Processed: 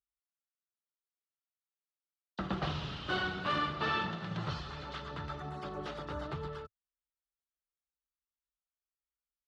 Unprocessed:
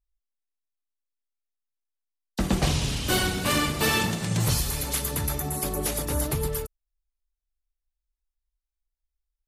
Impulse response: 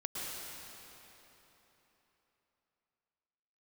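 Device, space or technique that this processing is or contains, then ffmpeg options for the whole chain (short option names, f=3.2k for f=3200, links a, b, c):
guitar cabinet: -filter_complex "[0:a]highpass=100,equalizer=f=110:t=q:w=4:g=-7,equalizer=f=250:t=q:w=4:g=-10,equalizer=f=470:t=q:w=4:g=-4,equalizer=f=1.3k:t=q:w=4:g=9,equalizer=f=2.3k:t=q:w=4:g=-7,lowpass=f=3.7k:w=0.5412,lowpass=f=3.7k:w=1.3066,asettb=1/sr,asplit=3[a][b][c];[a]atrim=end=3.754[d];[b]atrim=start=3.75:end=5.29,asetpts=PTS-STARTPTS,afade=t=in:d=0.004:c=qsin,afade=t=out:st=1.536:d=0.004:c=qsin,lowpass=7.3k[e];[c]atrim=start=5.286[f];[d][e]acrossfade=d=0.004:c1=hsin:c2=qsin[g];[g][f]acrossfade=d=0.004:c1=qsin:c2=hsin,volume=-8dB"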